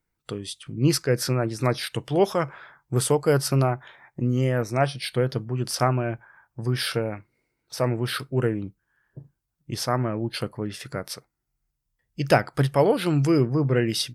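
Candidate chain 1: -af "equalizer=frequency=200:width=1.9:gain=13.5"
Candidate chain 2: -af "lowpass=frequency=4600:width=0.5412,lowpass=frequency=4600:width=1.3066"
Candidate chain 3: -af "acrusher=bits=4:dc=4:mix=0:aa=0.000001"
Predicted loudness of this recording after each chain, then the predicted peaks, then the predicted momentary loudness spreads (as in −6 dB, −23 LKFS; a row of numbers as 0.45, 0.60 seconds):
−21.5, −25.0, −24.5 LKFS; −2.5, −4.5, −4.5 dBFS; 12, 14, 17 LU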